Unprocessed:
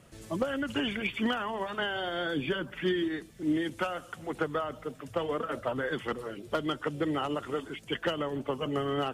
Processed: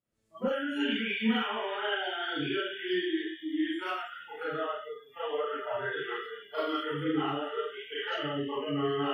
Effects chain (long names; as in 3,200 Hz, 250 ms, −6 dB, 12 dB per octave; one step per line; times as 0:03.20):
delay with a high-pass on its return 106 ms, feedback 84%, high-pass 3,300 Hz, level −7.5 dB
four-comb reverb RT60 0.74 s, combs from 28 ms, DRR −8.5 dB
noise reduction from a noise print of the clip's start 29 dB
level −8 dB